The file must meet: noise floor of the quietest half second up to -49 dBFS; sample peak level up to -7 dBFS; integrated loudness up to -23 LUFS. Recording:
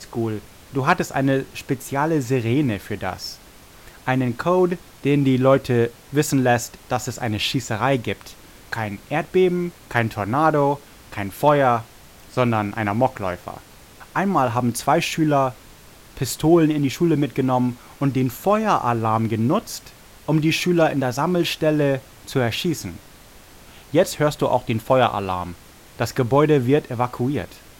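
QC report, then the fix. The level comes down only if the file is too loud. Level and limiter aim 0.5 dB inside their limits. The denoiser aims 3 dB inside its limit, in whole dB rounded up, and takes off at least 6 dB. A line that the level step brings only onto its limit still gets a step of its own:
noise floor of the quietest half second -46 dBFS: fail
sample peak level -4.0 dBFS: fail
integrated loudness -21.0 LUFS: fail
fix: noise reduction 6 dB, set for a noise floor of -46 dBFS; trim -2.5 dB; peak limiter -7.5 dBFS

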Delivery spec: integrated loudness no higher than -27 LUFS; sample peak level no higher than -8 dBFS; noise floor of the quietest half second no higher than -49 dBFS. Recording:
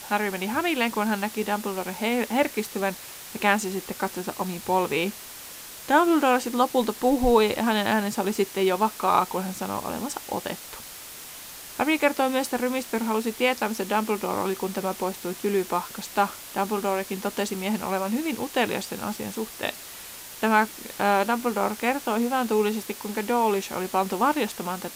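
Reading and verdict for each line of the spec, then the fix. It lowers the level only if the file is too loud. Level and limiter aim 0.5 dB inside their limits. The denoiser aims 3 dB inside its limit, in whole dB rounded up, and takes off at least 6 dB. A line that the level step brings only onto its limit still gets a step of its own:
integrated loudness -25.5 LUFS: fail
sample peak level -6.0 dBFS: fail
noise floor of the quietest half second -41 dBFS: fail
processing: noise reduction 9 dB, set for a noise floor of -41 dBFS; trim -2 dB; peak limiter -8.5 dBFS

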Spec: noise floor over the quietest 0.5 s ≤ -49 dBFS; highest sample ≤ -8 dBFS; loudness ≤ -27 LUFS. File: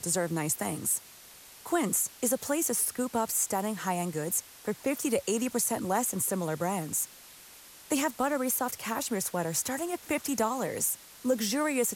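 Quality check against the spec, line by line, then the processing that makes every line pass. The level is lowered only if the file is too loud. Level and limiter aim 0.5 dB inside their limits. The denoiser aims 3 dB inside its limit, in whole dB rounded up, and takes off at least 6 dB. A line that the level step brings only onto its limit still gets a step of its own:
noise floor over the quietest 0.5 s -52 dBFS: pass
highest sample -14.0 dBFS: pass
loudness -29.5 LUFS: pass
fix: none needed

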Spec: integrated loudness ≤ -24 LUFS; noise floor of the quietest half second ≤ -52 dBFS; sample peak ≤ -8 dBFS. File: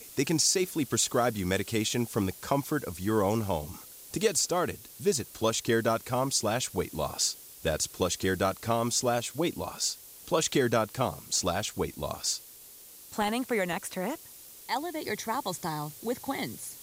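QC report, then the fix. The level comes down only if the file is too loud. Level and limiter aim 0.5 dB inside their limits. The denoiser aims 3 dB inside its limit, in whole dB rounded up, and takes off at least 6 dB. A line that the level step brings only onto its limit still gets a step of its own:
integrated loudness -29.5 LUFS: pass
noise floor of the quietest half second -50 dBFS: fail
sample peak -13.0 dBFS: pass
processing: noise reduction 6 dB, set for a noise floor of -50 dBFS

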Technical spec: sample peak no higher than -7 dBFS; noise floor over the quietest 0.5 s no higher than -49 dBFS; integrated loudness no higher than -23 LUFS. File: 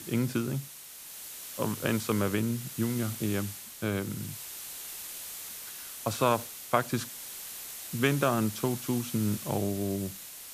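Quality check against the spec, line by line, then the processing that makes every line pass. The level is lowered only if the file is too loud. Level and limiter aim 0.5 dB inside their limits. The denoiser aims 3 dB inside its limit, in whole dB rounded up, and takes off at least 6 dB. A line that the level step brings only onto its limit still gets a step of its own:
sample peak -8.5 dBFS: pass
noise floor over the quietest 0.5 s -46 dBFS: fail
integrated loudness -32.0 LUFS: pass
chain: noise reduction 6 dB, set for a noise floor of -46 dBFS

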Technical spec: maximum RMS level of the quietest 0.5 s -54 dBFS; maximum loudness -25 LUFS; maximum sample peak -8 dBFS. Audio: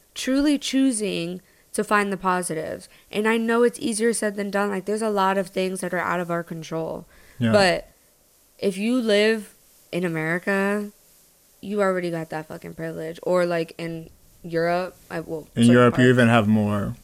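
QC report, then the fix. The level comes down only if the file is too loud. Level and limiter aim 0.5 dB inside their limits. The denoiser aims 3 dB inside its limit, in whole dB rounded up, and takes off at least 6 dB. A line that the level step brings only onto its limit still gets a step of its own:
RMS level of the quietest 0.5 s -58 dBFS: pass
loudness -22.5 LUFS: fail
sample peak -5.5 dBFS: fail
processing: trim -3 dB

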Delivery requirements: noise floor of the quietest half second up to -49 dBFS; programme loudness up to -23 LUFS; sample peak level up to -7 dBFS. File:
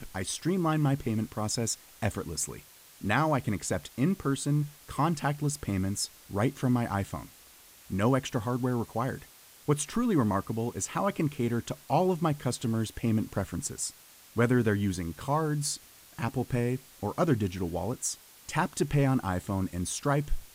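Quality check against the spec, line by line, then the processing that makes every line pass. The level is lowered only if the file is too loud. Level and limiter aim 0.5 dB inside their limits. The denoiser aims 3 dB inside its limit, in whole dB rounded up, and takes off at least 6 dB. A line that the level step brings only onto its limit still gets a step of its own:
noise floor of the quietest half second -55 dBFS: pass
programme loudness -30.0 LUFS: pass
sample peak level -11.5 dBFS: pass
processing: none needed

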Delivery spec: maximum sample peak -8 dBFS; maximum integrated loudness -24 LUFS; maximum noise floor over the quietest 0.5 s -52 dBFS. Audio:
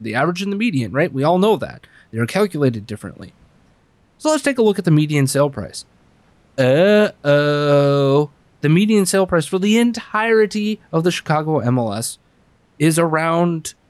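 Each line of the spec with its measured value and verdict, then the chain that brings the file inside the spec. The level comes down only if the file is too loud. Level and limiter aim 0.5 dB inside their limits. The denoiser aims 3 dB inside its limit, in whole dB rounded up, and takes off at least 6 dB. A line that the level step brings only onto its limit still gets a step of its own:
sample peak -5.0 dBFS: fail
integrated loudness -17.0 LUFS: fail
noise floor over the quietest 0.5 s -56 dBFS: pass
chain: trim -7.5 dB

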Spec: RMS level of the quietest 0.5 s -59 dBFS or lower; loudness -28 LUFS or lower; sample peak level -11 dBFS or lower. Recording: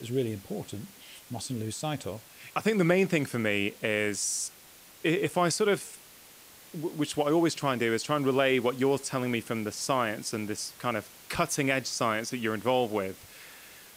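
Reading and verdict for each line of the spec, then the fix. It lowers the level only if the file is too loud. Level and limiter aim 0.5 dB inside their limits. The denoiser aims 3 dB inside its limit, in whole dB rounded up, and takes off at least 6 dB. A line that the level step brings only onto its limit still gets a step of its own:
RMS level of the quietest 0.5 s -53 dBFS: fail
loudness -29.0 LUFS: pass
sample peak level -12.0 dBFS: pass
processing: noise reduction 9 dB, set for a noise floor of -53 dBFS

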